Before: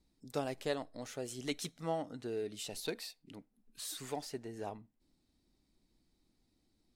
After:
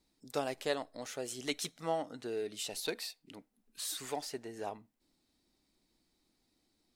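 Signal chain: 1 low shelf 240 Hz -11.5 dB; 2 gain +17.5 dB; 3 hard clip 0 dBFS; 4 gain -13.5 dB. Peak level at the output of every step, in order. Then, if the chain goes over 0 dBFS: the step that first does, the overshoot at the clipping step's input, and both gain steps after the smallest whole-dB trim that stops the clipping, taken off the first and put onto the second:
-21.5, -4.0, -4.0, -17.5 dBFS; no overload

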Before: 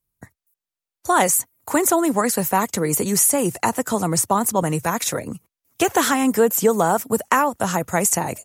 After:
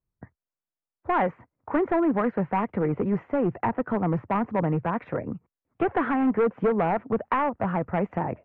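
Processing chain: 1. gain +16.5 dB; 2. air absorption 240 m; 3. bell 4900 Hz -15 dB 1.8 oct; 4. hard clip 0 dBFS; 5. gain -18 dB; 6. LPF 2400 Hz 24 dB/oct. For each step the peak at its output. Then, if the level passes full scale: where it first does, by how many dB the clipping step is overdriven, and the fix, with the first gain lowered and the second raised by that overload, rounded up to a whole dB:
+12.0, +10.0, +9.0, 0.0, -18.0, -16.5 dBFS; step 1, 9.0 dB; step 1 +7.5 dB, step 5 -9 dB

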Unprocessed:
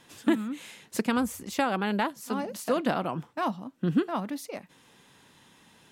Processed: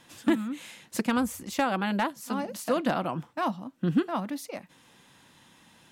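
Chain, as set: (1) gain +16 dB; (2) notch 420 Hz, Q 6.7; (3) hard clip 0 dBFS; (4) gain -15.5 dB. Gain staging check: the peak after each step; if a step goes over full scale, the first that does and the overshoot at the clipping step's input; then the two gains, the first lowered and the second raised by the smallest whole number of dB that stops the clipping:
+3.0, +3.0, 0.0, -15.5 dBFS; step 1, 3.0 dB; step 1 +13 dB, step 4 -12.5 dB

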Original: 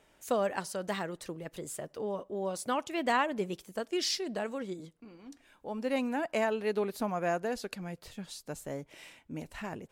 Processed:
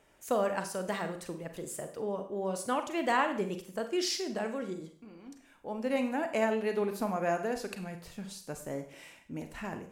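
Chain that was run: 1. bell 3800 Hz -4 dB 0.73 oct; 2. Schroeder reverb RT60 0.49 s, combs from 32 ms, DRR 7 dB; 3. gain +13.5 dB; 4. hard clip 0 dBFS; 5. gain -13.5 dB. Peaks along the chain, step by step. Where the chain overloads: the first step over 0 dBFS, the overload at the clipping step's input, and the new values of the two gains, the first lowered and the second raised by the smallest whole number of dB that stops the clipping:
-15.5, -15.0, -1.5, -1.5, -15.0 dBFS; no overload

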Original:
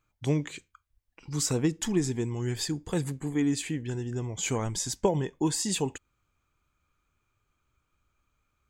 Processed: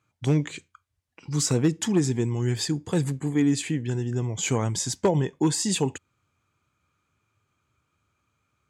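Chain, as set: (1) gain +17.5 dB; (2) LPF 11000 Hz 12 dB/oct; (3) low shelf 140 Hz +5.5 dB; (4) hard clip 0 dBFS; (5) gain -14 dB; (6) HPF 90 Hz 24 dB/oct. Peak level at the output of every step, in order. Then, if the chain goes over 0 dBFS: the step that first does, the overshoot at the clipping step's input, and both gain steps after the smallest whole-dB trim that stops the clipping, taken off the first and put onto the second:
+6.5, +6.5, +8.0, 0.0, -14.0, -9.0 dBFS; step 1, 8.0 dB; step 1 +9.5 dB, step 5 -6 dB

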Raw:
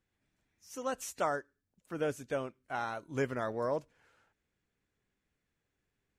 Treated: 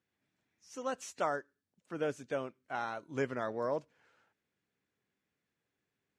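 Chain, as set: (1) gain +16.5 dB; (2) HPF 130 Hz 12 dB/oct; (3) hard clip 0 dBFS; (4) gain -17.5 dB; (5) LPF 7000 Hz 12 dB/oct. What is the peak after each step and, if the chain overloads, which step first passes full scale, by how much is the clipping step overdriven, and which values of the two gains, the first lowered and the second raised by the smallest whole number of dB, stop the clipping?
-3.0, -2.5, -2.5, -20.0, -20.0 dBFS; no overload

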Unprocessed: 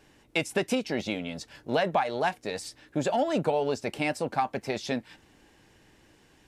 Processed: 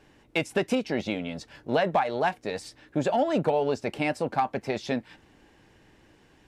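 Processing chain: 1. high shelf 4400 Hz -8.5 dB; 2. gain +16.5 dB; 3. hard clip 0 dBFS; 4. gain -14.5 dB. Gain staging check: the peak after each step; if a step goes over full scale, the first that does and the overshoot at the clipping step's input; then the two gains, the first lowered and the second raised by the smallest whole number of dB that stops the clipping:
-13.0, +3.5, 0.0, -14.5 dBFS; step 2, 3.5 dB; step 2 +12.5 dB, step 4 -10.5 dB

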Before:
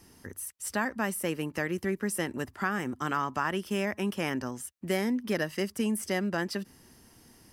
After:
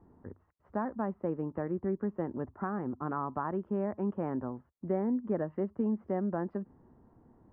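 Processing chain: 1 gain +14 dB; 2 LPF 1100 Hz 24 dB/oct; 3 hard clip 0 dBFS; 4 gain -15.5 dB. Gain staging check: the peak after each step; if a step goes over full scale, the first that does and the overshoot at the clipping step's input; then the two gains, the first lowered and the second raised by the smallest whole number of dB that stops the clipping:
-1.0, -4.0, -4.0, -19.5 dBFS; no overload

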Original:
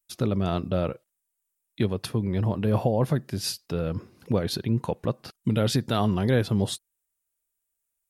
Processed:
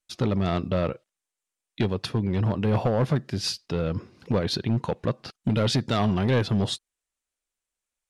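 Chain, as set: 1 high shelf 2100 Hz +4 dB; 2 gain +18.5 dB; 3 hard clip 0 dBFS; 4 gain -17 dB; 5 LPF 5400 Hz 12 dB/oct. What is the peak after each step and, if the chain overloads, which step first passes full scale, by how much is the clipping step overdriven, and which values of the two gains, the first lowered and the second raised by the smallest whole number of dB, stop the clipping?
-9.5, +9.0, 0.0, -17.0, -16.5 dBFS; step 2, 9.0 dB; step 2 +9.5 dB, step 4 -8 dB

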